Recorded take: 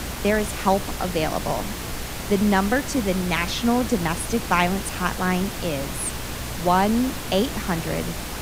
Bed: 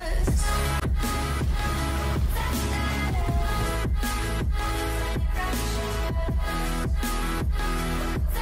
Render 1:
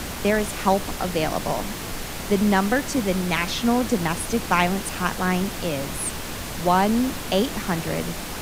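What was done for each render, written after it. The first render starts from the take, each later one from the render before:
hum removal 60 Hz, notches 2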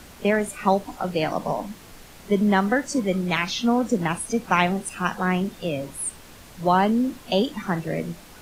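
noise reduction from a noise print 14 dB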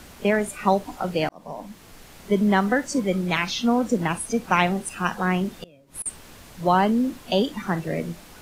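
0:01.29–0:02.33: fade in equal-power
0:05.53–0:06.06: gate with flip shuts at −22 dBFS, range −25 dB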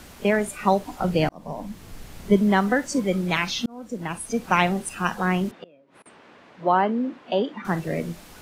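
0:00.99–0:02.37: low-shelf EQ 220 Hz +10 dB
0:03.66–0:04.48: fade in
0:05.51–0:07.65: band-pass filter 260–2,300 Hz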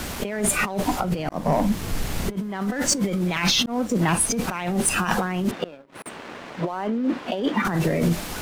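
compressor whose output falls as the input rises −31 dBFS, ratio −1
leveller curve on the samples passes 2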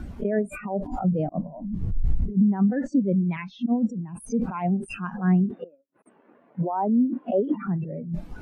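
compressor whose output falls as the input rises −27 dBFS, ratio −1
every bin expanded away from the loudest bin 2.5 to 1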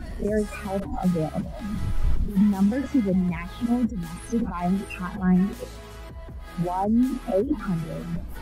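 mix in bed −13 dB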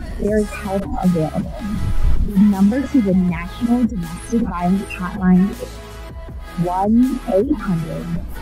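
level +7 dB

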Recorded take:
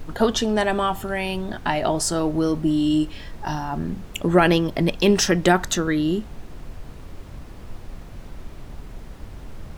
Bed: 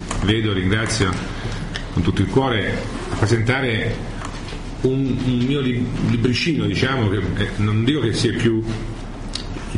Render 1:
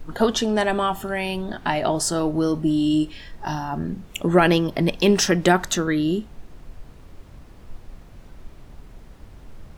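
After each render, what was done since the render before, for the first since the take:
noise reduction from a noise print 6 dB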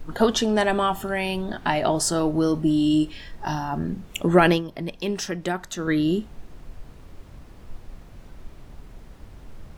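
0:04.49–0:05.91: duck −10 dB, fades 0.14 s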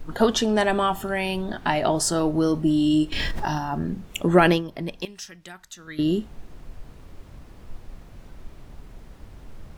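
0:03.12–0:03.58: envelope flattener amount 100%
0:05.05–0:05.99: guitar amp tone stack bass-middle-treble 5-5-5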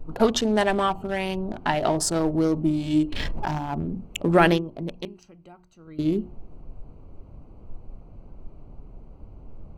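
adaptive Wiener filter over 25 samples
mains-hum notches 60/120/180/240/300/360 Hz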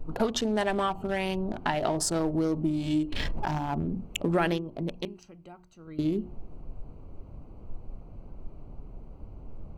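downward compressor 2.5 to 1, threshold −26 dBFS, peak gain reduction 9.5 dB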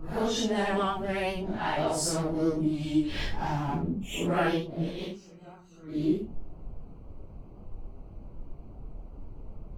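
random phases in long frames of 200 ms
pitch vibrato 7.8 Hz 40 cents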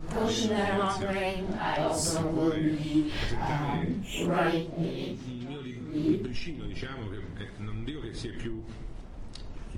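mix in bed −19.5 dB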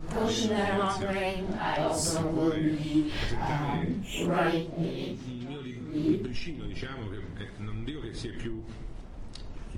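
no processing that can be heard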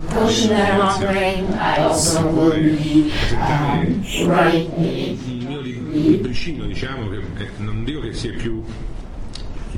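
level +12 dB

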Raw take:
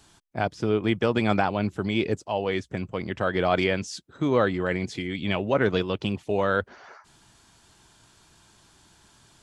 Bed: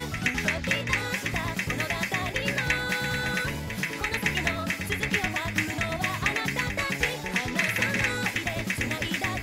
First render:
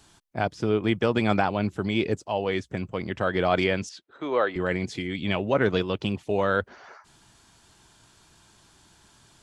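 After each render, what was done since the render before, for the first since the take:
0:03.89–0:04.56: three-way crossover with the lows and the highs turned down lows −21 dB, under 350 Hz, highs −17 dB, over 4,200 Hz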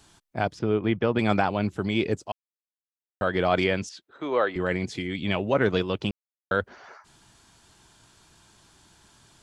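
0:00.59–0:01.19: high-frequency loss of the air 230 metres
0:02.32–0:03.21: silence
0:06.11–0:06.51: silence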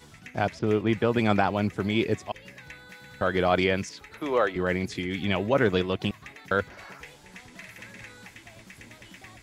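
mix in bed −19 dB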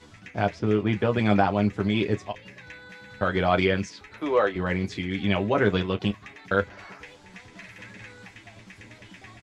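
high-frequency loss of the air 64 metres
on a send: ambience of single reflections 10 ms −5 dB, 34 ms −15 dB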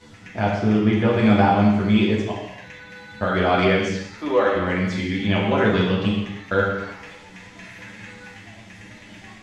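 reverb whose tail is shaped and stops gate 360 ms falling, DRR −3 dB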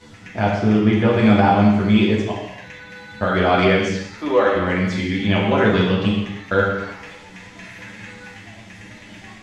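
level +2.5 dB
brickwall limiter −3 dBFS, peak gain reduction 3 dB

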